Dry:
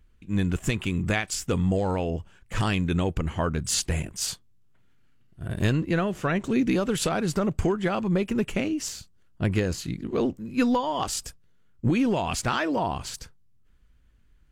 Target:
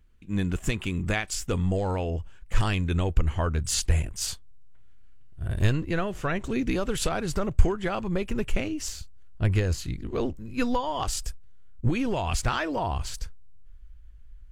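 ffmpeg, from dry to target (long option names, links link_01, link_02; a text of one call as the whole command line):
ffmpeg -i in.wav -af "asubboost=boost=7.5:cutoff=67,volume=-1.5dB" out.wav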